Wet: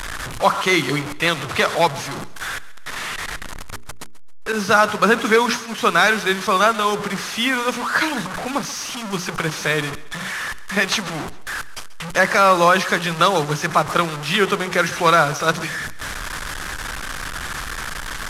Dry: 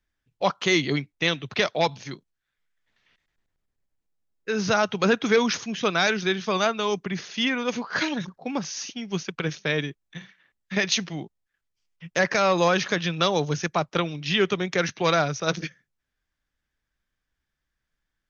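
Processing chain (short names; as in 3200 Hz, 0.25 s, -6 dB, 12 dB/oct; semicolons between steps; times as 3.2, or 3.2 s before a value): delta modulation 64 kbps, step -27 dBFS; 4.52–5.78 expander -25 dBFS; bell 1200 Hz +8.5 dB 1.1 oct; notches 60/120/180/240/300/360/420 Hz; thinning echo 0.135 s, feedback 41%, high-pass 190 Hz, level -18 dB; gain +3 dB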